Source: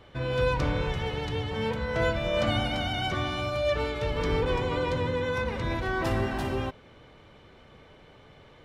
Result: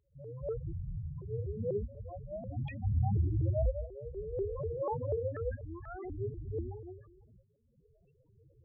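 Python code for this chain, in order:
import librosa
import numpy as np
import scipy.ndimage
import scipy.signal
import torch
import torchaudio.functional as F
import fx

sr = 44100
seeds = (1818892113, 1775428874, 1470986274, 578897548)

p1 = x + fx.echo_split(x, sr, split_hz=1300.0, low_ms=108, high_ms=161, feedback_pct=52, wet_db=-7.0, dry=0)
p2 = fx.rotary_switch(p1, sr, hz=5.5, then_hz=0.85, switch_at_s=4.19)
p3 = fx.fixed_phaser(p2, sr, hz=950.0, stages=4, at=(0.71, 1.21), fade=0.02)
p4 = fx.low_shelf(p3, sr, hz=410.0, db=10.0, at=(2.84, 3.82))
p5 = fx.room_early_taps(p4, sr, ms=(33, 72), db=(-3.5, -10.5))
p6 = fx.tremolo_shape(p5, sr, shape='saw_up', hz=0.54, depth_pct=80)
p7 = fx.chorus_voices(p6, sr, voices=2, hz=0.58, base_ms=22, depth_ms=3.1, mix_pct=25)
p8 = 10.0 ** (-20.0 / 20.0) * (np.abs((p7 / 10.0 ** (-20.0 / 20.0) + 3.0) % 4.0 - 2.0) - 1.0)
p9 = fx.spec_topn(p8, sr, count=4)
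y = fx.vibrato_shape(p9, sr, shape='saw_up', rate_hz=4.1, depth_cents=250.0)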